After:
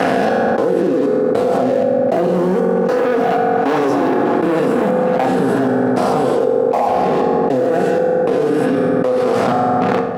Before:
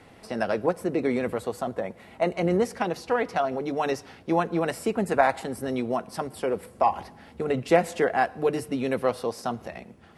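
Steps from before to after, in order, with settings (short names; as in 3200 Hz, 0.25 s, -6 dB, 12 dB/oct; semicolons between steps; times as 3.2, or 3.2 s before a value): spectral swells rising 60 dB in 1.72 s; Doppler pass-by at 3.98, 6 m/s, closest 4.6 m; Butterworth band-stop 2200 Hz, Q 4.1; tilt -3 dB/oct; delay with a stepping band-pass 0.228 s, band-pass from 3700 Hz, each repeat -1.4 oct, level -6.5 dB; step gate "xxx...xx" 156 bpm -24 dB; dynamic EQ 310 Hz, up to +5 dB, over -33 dBFS, Q 0.99; sample leveller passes 3; HPF 180 Hz 12 dB/oct; on a send at -3.5 dB: reverb RT60 1.2 s, pre-delay 3 ms; on the sum: fast leveller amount 100%; gain -7.5 dB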